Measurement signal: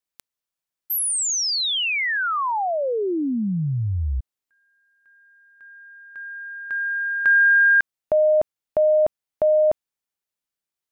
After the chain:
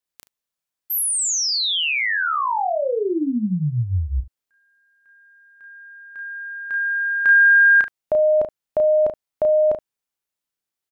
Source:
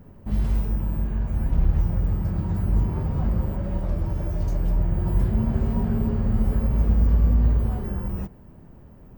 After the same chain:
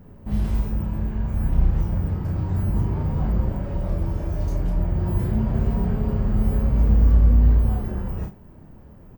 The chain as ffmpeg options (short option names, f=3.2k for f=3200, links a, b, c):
-af "aecho=1:1:33|73:0.631|0.158"